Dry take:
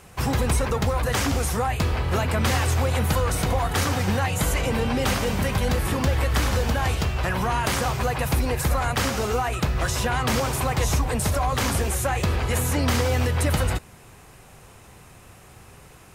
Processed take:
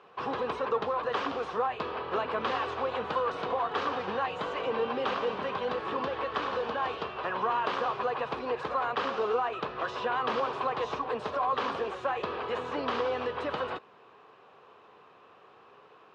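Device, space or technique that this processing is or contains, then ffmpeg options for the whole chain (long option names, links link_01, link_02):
phone earpiece: -af "highpass=360,equalizer=frequency=440:width_type=q:width=4:gain=7,equalizer=frequency=1100:width_type=q:width=4:gain=8,equalizer=frequency=2100:width_type=q:width=4:gain=-8,lowpass=frequency=3500:width=0.5412,lowpass=frequency=3500:width=1.3066,volume=-6dB"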